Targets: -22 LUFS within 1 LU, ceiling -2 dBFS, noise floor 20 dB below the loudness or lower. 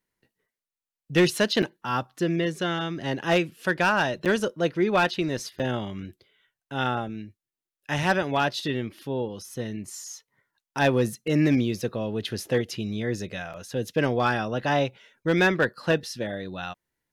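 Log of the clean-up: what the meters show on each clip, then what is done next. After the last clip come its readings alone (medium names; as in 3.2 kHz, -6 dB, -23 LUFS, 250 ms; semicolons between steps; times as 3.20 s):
clipped samples 0.2%; clipping level -13.5 dBFS; dropouts 4; longest dropout 7.4 ms; loudness -26.0 LUFS; peak level -13.5 dBFS; loudness target -22.0 LUFS
-> clip repair -13.5 dBFS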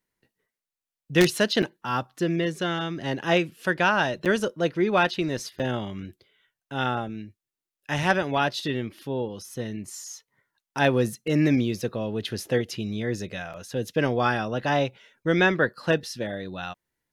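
clipped samples 0.0%; dropouts 4; longest dropout 7.4 ms
-> interpolate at 1.62/4.25/5.59/13.53 s, 7.4 ms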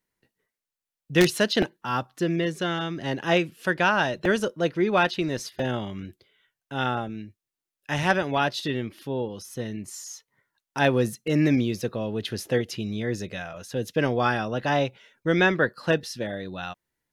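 dropouts 0; loudness -26.0 LUFS; peak level -4.5 dBFS; loudness target -22.0 LUFS
-> trim +4 dB; peak limiter -2 dBFS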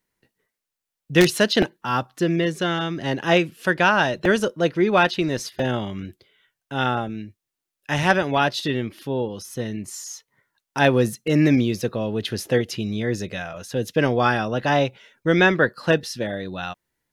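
loudness -22.0 LUFS; peak level -2.0 dBFS; noise floor -85 dBFS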